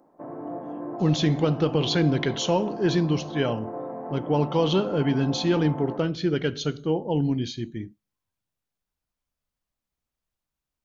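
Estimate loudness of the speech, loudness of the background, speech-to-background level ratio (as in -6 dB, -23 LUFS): -25.0 LUFS, -36.0 LUFS, 11.0 dB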